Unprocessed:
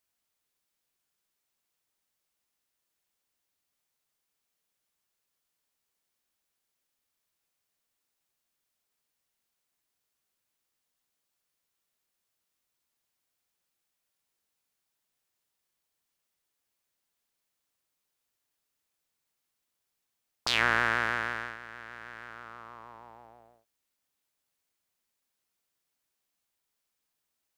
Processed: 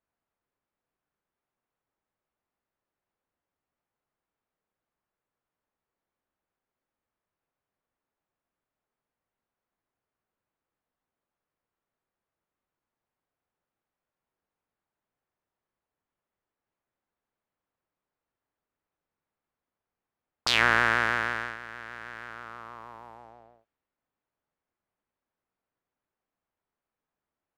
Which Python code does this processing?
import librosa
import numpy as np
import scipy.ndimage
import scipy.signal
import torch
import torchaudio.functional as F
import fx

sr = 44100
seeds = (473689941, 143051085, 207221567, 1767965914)

y = fx.env_lowpass(x, sr, base_hz=1300.0, full_db=-44.5)
y = y * librosa.db_to_amplitude(3.5)